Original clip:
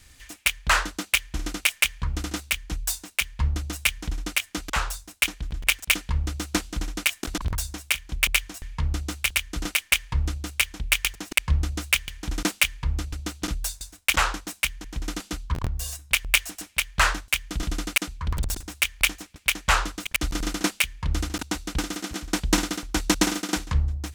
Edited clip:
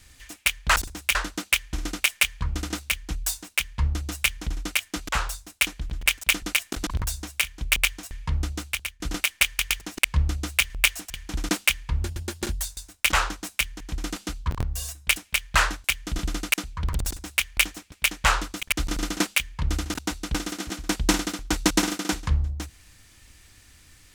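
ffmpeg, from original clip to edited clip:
-filter_complex "[0:a]asplit=11[s0][s1][s2][s3][s4][s5][s6][s7][s8][s9][s10];[s0]atrim=end=0.762[s11];[s1]atrim=start=18.488:end=18.882[s12];[s2]atrim=start=0.758:end=6.032[s13];[s3]atrim=start=6.928:end=9.51,asetpts=PTS-STARTPTS,afade=t=out:st=1.942:d=0.64:c=qsin:silence=0.0841395[s14];[s4]atrim=start=9.51:end=10.102,asetpts=PTS-STARTPTS,afade=t=in:d=0.004:c=hsin:silence=0.0841395[s15];[s5]atrim=start=10.928:end=12.042[s16];[s6]atrim=start=16.198:end=16.602[s17];[s7]atrim=start=12.038:end=12.954[s18];[s8]atrim=start=12.95:end=13.67,asetpts=PTS-STARTPTS,asetrate=51156,aresample=44100,atrim=end_sample=27372,asetpts=PTS-STARTPTS[s19];[s9]atrim=start=13.666:end=16.202[s20];[s10]atrim=start=16.598[s21];[s11][s12]acrossfade=d=0.004:c1=hsin:c2=hsin[s22];[s22][s13]acrossfade=d=0.004:c1=hsin:c2=hsin[s23];[s14][s15]concat=n=2:v=0:a=1[s24];[s23][s24]acrossfade=d=0.004:c1=hsin:c2=hsin[s25];[s25][s16]acrossfade=d=0.004:c1=hsin:c2=hsin[s26];[s26][s17]acrossfade=d=0.004:c1=hsin:c2=hsin[s27];[s27][s18]acrossfade=d=0.004:c1=hsin:c2=hsin[s28];[s28][s19]acrossfade=d=0.004:c1=hsin:c2=hsin[s29];[s29][s20]acrossfade=d=0.004:c1=hsin:c2=hsin[s30];[s30][s21]acrossfade=d=0.004:c1=hsin:c2=hsin"

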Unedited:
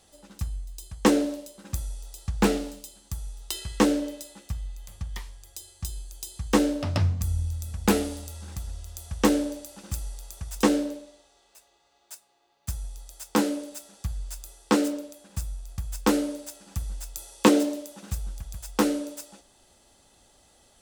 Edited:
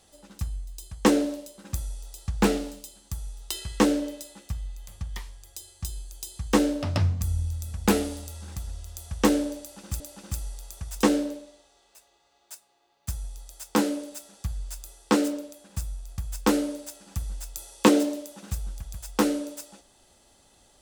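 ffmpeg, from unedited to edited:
-filter_complex "[0:a]asplit=2[s0][s1];[s0]atrim=end=10.002[s2];[s1]atrim=start=9.598[s3];[s2][s3]acrossfade=d=0.004:c1=hsin:c2=hsin"

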